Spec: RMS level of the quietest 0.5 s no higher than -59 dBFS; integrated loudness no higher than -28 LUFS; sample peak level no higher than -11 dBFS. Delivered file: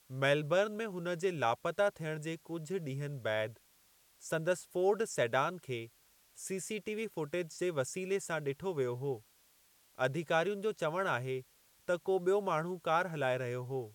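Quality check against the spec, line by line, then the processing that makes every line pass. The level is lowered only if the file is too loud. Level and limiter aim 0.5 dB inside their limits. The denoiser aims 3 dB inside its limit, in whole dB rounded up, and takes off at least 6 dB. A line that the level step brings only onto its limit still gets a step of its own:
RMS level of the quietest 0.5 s -68 dBFS: OK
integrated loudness -35.0 LUFS: OK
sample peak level -16.0 dBFS: OK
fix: none

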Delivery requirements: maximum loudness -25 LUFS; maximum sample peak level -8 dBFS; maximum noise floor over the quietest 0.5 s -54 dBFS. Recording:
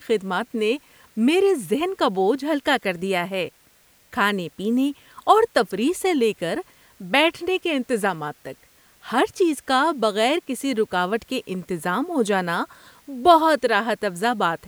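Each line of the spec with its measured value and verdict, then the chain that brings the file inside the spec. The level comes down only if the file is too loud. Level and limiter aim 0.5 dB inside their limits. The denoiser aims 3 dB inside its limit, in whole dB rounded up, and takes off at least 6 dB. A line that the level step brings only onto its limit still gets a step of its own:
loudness -22.0 LUFS: fail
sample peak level -4.0 dBFS: fail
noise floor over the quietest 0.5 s -57 dBFS: OK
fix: gain -3.5 dB; limiter -8.5 dBFS

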